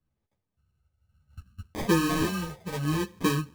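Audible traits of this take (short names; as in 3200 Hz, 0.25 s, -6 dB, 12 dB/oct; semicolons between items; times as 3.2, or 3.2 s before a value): phasing stages 12, 0.67 Hz, lowest notch 270–1200 Hz; aliases and images of a low sample rate 1400 Hz, jitter 0%; a shimmering, thickened sound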